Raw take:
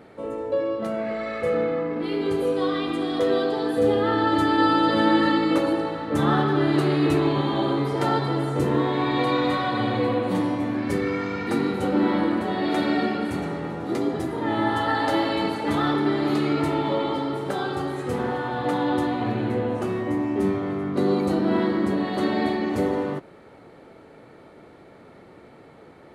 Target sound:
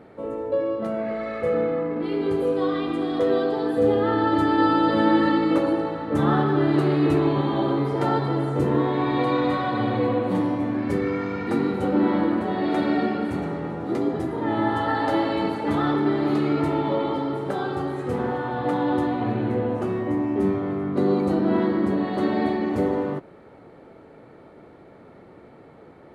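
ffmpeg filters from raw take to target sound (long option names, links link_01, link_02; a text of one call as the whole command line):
ffmpeg -i in.wav -af "highshelf=frequency=2300:gain=-9,volume=1dB" out.wav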